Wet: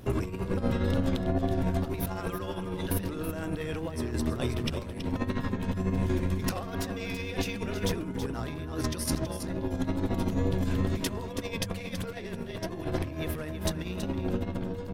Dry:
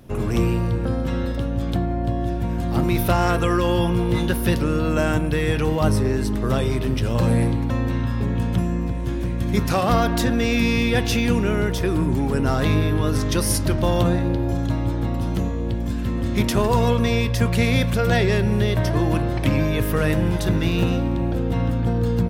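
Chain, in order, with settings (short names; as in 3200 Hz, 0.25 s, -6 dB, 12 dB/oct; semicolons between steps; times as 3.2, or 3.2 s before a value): granular stretch 0.67×, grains 27 ms; negative-ratio compressor -26 dBFS, ratio -0.5; notches 50/100/150/200 Hz; wow and flutter 34 cents; echo 0.326 s -9.5 dB; gain -3.5 dB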